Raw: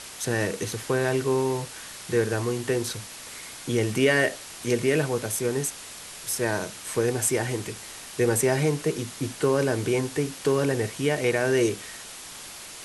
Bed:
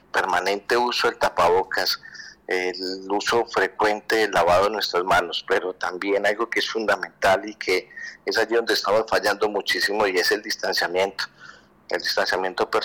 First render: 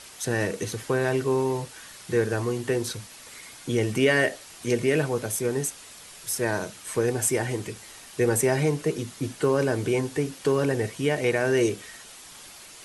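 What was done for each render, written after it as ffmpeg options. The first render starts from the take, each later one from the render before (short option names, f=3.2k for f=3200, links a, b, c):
-af "afftdn=nr=6:nf=-41"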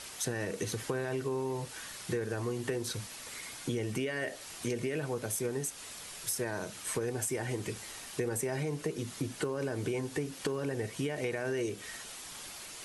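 -af "alimiter=limit=-15dB:level=0:latency=1:release=33,acompressor=threshold=-31dB:ratio=6"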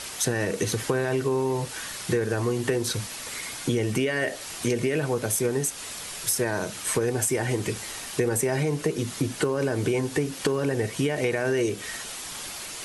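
-af "volume=9dB"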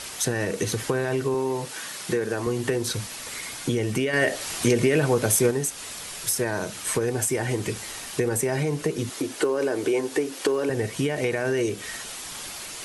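-filter_complex "[0:a]asettb=1/sr,asplit=3[a][b][c];[a]atrim=end=1.344[d];[b]atrim=start=1.34:end=2.47,asetpts=PTS-STARTPTS,afade=t=in:d=0.004:c=qsin,afade=t=out:st=1.126:d=0.004:c=qsin,highpass=160[e];[c]atrim=start=2.466[f];[d][e]acrossfade=d=0.004:c1=hsin:c2=qsin[g];[g][f]acrossfade=d=0.004:c1=qsin:c2=hsin,asettb=1/sr,asplit=3[h][i][j];[h]atrim=end=4.134[k];[i]atrim=start=4.13:end=5.51,asetpts=PTS-STARTPTS,afade=t=in:d=0.004:c=qsin,afade=t=out:st=1.376:d=0.004:c=qsin,acontrast=24[l];[j]atrim=start=5.506[m];[k][l]acrossfade=d=0.004:c1=hsin:c2=qsin[n];[n][m]acrossfade=d=0.004:c1=qsin:c2=hsin,asettb=1/sr,asplit=3[o][p][q];[o]atrim=end=9.094[r];[p]atrim=start=9.09:end=10.7,asetpts=PTS-STARTPTS,afade=t=in:d=0.004:c=qsin,afade=t=out:st=1.606:d=0.004:c=qsin,lowshelf=f=230:t=q:w=1.5:g=-12[s];[q]atrim=start=10.696[t];[r][s]acrossfade=d=0.004:c1=hsin:c2=qsin[u];[u][t]acrossfade=d=0.004:c1=qsin:c2=hsin"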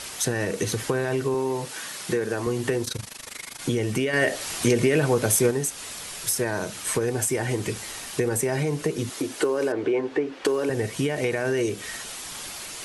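-filter_complex "[0:a]asplit=3[a][b][c];[a]afade=t=out:st=2.84:d=0.02[d];[b]tremolo=f=25:d=0.889,afade=t=in:st=2.84:d=0.02,afade=t=out:st=3.6:d=0.02[e];[c]afade=t=in:st=3.6:d=0.02[f];[d][e][f]amix=inputs=3:normalize=0,asettb=1/sr,asplit=3[g][h][i];[g]atrim=end=9.724[j];[h]atrim=start=9.72:end=10.45,asetpts=PTS-STARTPTS,afade=t=in:d=0.004:c=qsin,afade=t=out:st=0.726:d=0.004:c=qsin,lowpass=2.5k[k];[i]atrim=start=10.446[l];[j][k]acrossfade=d=0.004:c1=hsin:c2=qsin[m];[m][l]acrossfade=d=0.004:c1=qsin:c2=hsin"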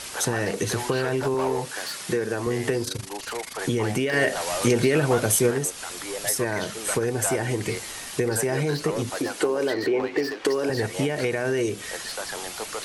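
-filter_complex "[1:a]volume=-12.5dB[a];[0:a][a]amix=inputs=2:normalize=0"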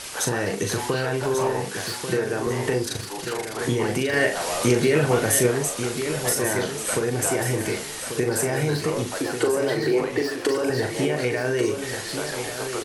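-filter_complex "[0:a]asplit=2[a][b];[b]adelay=40,volume=-6.5dB[c];[a][c]amix=inputs=2:normalize=0,aecho=1:1:1140|2280|3420|4560:0.376|0.128|0.0434|0.0148"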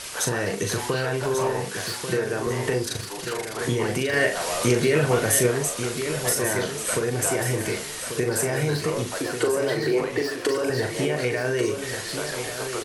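-af "equalizer=f=280:t=o:w=0.77:g=-3,bandreject=f=820:w=12"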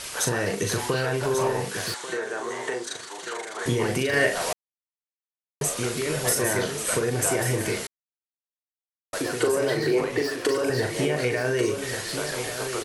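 -filter_complex "[0:a]asettb=1/sr,asplit=3[a][b][c];[a]atrim=end=1.944[d];[b]atrim=start=1.94:end=3.66,asetpts=PTS-STARTPTS,afade=t=in:d=0.004:c=qsin,afade=t=out:st=1.716:d=0.004:c=qsin,highpass=460,equalizer=f=510:t=q:w=4:g=-4,equalizer=f=2.6k:t=q:w=4:g=-6,equalizer=f=5k:t=q:w=4:g=-9,lowpass=f=8.4k:w=0.5412,lowpass=f=8.4k:w=1.3066[e];[c]atrim=start=3.656[f];[d][e]acrossfade=d=0.004:c1=hsin:c2=qsin[g];[g][f]acrossfade=d=0.004:c1=qsin:c2=hsin,asplit=5[h][i][j][k][l];[h]atrim=end=4.53,asetpts=PTS-STARTPTS,afade=t=out:st=4.526:d=0.004:c=hsin[m];[i]atrim=start=4.53:end=5.61,asetpts=PTS-STARTPTS,volume=0[n];[j]atrim=start=5.61:end=7.87,asetpts=PTS-STARTPTS,afade=t=in:d=0.004:c=hsin,afade=t=out:st=2.256:d=0.004:c=hsin[o];[k]atrim=start=7.87:end=9.13,asetpts=PTS-STARTPTS,volume=0[p];[l]atrim=start=9.13,asetpts=PTS-STARTPTS,afade=t=in:d=0.004:c=hsin[q];[m][n][o][p][q]concat=n=5:v=0:a=1"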